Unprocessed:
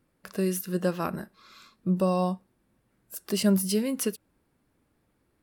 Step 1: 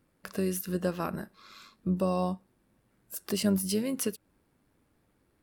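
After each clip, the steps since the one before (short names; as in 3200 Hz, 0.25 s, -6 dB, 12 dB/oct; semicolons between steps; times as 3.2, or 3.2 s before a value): in parallel at +1.5 dB: compressor, threshold -33 dBFS, peak gain reduction 15 dB; on the sum: AM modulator 99 Hz, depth 20%; gain -4.5 dB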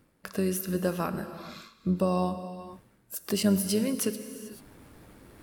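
non-linear reverb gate 0.46 s flat, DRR 10.5 dB; reverse; upward compressor, threshold -39 dBFS; reverse; gain +2 dB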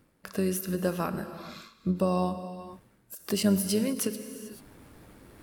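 ending taper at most 220 dB/s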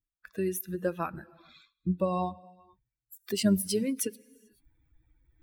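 per-bin expansion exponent 2; gain +2 dB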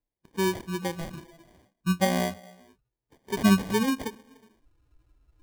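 sample-and-hold 33×; harmonic-percussive split percussive -13 dB; gain +5 dB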